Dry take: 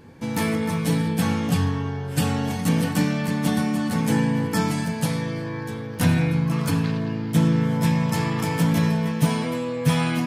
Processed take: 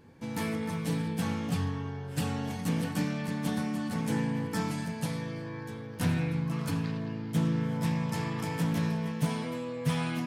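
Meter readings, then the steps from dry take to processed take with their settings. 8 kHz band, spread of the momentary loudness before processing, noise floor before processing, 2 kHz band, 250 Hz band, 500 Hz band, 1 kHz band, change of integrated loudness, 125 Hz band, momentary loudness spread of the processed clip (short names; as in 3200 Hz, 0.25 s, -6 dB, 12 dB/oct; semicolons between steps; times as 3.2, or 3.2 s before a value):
-10.0 dB, 6 LU, -31 dBFS, -9.0 dB, -9.0 dB, -9.0 dB, -9.0 dB, -9.0 dB, -9.0 dB, 6 LU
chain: Doppler distortion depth 0.15 ms; gain -9 dB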